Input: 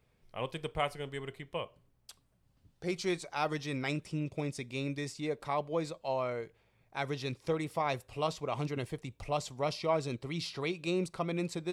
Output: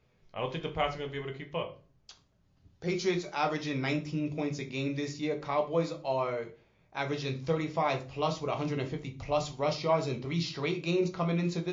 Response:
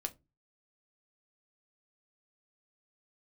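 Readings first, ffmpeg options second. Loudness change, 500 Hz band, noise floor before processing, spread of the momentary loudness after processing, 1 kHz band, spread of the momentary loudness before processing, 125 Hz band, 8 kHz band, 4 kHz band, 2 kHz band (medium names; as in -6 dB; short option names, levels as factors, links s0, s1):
+3.5 dB, +3.5 dB, -72 dBFS, 8 LU, +3.0 dB, 7 LU, +4.0 dB, 0.0 dB, +2.5 dB, +2.5 dB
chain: -filter_complex "[1:a]atrim=start_sample=2205,asetrate=22932,aresample=44100[s0];[0:a][s0]afir=irnorm=-1:irlink=0" -ar 16000 -c:a libmp3lame -b:a 40k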